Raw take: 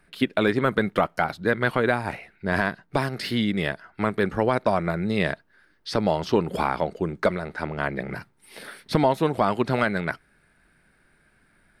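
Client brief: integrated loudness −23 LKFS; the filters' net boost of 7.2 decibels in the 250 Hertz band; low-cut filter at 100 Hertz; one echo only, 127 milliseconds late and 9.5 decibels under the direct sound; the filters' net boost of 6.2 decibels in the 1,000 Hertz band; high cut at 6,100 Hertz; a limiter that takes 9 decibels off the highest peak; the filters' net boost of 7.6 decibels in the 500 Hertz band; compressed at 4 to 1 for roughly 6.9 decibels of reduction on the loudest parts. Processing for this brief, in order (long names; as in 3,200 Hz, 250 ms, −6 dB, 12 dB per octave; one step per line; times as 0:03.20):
high-pass filter 100 Hz
low-pass filter 6,100 Hz
parametric band 250 Hz +7.5 dB
parametric band 500 Hz +6 dB
parametric band 1,000 Hz +5.5 dB
downward compressor 4 to 1, threshold −17 dBFS
brickwall limiter −12.5 dBFS
single-tap delay 127 ms −9.5 dB
level +2.5 dB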